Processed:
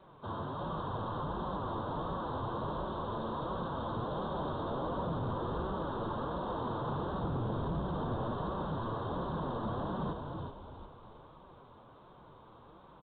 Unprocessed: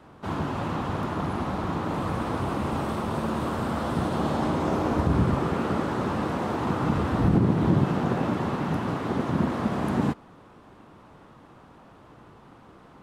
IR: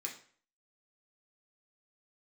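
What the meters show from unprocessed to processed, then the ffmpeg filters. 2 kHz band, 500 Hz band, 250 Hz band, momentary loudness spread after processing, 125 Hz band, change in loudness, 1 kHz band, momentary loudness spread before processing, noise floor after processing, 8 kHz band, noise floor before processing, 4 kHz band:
-13.5 dB, -8.0 dB, -13.5 dB, 20 LU, -11.0 dB, -10.5 dB, -7.0 dB, 7 LU, -57 dBFS, under -30 dB, -52 dBFS, -8.5 dB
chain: -filter_complex "[0:a]aecho=1:1:1.9:0.32,crystalizer=i=10:c=0,flanger=delay=5.2:depth=3.9:regen=9:speed=1.4:shape=sinusoidal,volume=23.7,asoftclip=hard,volume=0.0422,asuperstop=centerf=2300:order=4:qfactor=0.7,asplit=6[s0][s1][s2][s3][s4][s5];[s1]adelay=366,afreqshift=-56,volume=0.596[s6];[s2]adelay=732,afreqshift=-112,volume=0.245[s7];[s3]adelay=1098,afreqshift=-168,volume=0.1[s8];[s4]adelay=1464,afreqshift=-224,volume=0.0412[s9];[s5]adelay=1830,afreqshift=-280,volume=0.0168[s10];[s0][s6][s7][s8][s9][s10]amix=inputs=6:normalize=0,volume=0.531" -ar 8000 -c:a pcm_alaw

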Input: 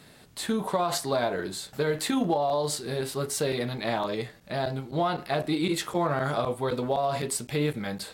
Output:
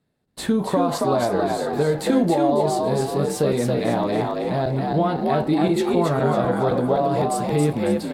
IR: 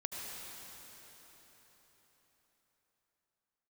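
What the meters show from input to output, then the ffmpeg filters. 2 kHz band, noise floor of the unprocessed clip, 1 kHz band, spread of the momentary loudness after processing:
+2.0 dB, -53 dBFS, +6.5 dB, 4 LU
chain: -filter_complex "[0:a]tiltshelf=f=970:g=6,asplit=6[s0][s1][s2][s3][s4][s5];[s1]adelay=275,afreqshift=57,volume=0.708[s6];[s2]adelay=550,afreqshift=114,volume=0.269[s7];[s3]adelay=825,afreqshift=171,volume=0.102[s8];[s4]adelay=1100,afreqshift=228,volume=0.0389[s9];[s5]adelay=1375,afreqshift=285,volume=0.0148[s10];[s0][s6][s7][s8][s9][s10]amix=inputs=6:normalize=0,asplit=2[s11][s12];[s12]acompressor=threshold=0.0251:ratio=6,volume=1.26[s13];[s11][s13]amix=inputs=2:normalize=0,agate=range=0.0316:threshold=0.0141:ratio=16:detection=peak"

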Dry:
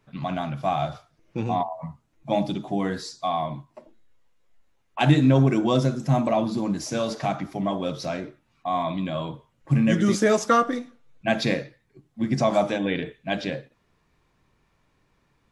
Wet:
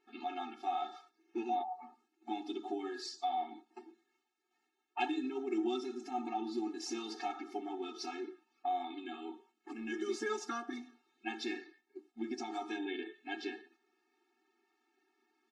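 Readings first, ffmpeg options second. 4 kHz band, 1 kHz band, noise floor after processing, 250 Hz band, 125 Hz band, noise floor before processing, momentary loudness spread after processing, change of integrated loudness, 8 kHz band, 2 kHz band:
-12.0 dB, -11.0 dB, -82 dBFS, -15.5 dB, under -40 dB, -68 dBFS, 13 LU, -15.0 dB, -13.0 dB, -13.0 dB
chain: -af "acompressor=threshold=0.0141:ratio=2.5,lowpass=6800,agate=range=0.501:threshold=0.00112:ratio=16:detection=peak,bandreject=f=1100:w=10,aecho=1:1:5.5:0.65,afftfilt=real='re*eq(mod(floor(b*sr/1024/230),2),1)':imag='im*eq(mod(floor(b*sr/1024/230),2),1)':win_size=1024:overlap=0.75,volume=1.12"

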